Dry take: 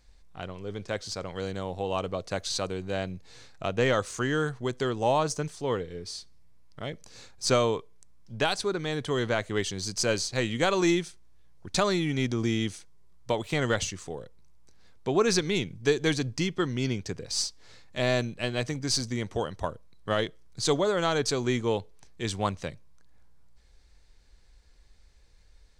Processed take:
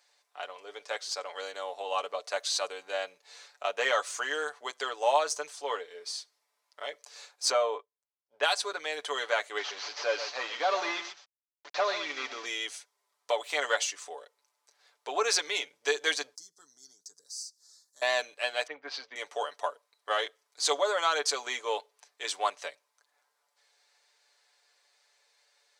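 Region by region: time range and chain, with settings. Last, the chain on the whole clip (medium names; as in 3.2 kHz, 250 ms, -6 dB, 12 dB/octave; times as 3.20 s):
7.51–8.43 s: low-pass 1.2 kHz 6 dB/octave + expander -38 dBFS
9.58–12.46 s: one-bit delta coder 32 kbps, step -38 dBFS + delay 124 ms -11.5 dB
16.35–18.02 s: FFT filter 190 Hz 0 dB, 650 Hz -24 dB, 5.1 kHz +6 dB + compression 2:1, threshold -48 dBFS + Butterworth band-stop 2.6 kHz, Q 0.62
18.67–19.16 s: low-pass 3.3 kHz 24 dB/octave + three bands expanded up and down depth 100%
whole clip: high-pass 570 Hz 24 dB/octave; comb 6.9 ms, depth 64%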